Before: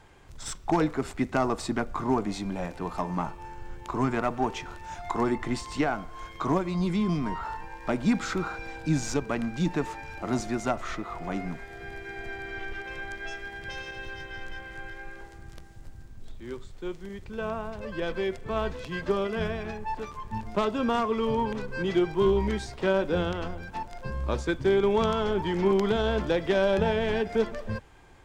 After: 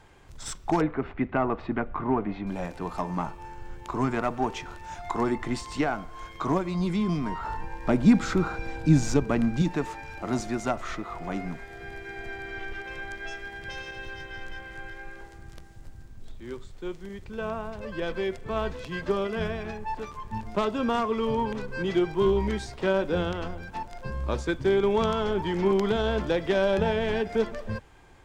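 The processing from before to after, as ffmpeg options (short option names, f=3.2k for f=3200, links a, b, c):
-filter_complex "[0:a]asettb=1/sr,asplit=3[a][b][c];[a]atrim=end=0.814[d];[b]atrim=start=0.81:end=2.47,asetpts=PTS-STARTPTS,afade=t=in:d=0.004:c=qsin,afade=t=out:st=1.656:d=0.004:c=qsin,lowpass=f=2.7k:w=0.5412,lowpass=f=2.7k:w=1.3066[e];[c]atrim=start=2.466[f];[d][e]acrossfade=d=0.004:c1=hsin:c2=qsin[g];[g][f]acrossfade=d=0.004:c1=qsin:c2=hsin,asettb=1/sr,asplit=3[h][i][j];[h]atrim=end=7.444[k];[i]atrim=start=7.44:end=9.62,asetpts=PTS-STARTPTS,afade=t=in:d=0.004:c=qsin,afade=t=out:st=2.176:d=0.004:c=qsin,lowshelf=f=450:g=8[l];[j]atrim=start=9.616[m];[k][l]acrossfade=d=0.004:c1=hsin:c2=qsin[n];[n][m]acrossfade=d=0.004:c1=qsin:c2=hsin"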